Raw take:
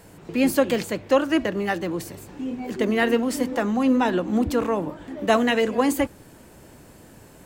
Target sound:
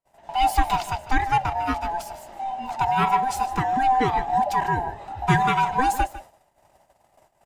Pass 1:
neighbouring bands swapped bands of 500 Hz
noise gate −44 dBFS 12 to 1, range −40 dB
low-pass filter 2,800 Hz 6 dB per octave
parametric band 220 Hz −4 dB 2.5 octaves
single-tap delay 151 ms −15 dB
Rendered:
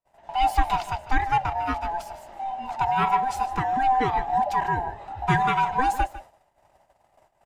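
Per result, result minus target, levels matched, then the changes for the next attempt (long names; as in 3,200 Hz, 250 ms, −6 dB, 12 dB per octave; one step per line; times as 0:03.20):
8,000 Hz band −5.0 dB; 250 Hz band −2.0 dB
change: low-pass filter 8,400 Hz 6 dB per octave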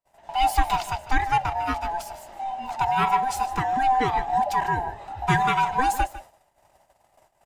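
250 Hz band −2.5 dB
remove: parametric band 220 Hz −4 dB 2.5 octaves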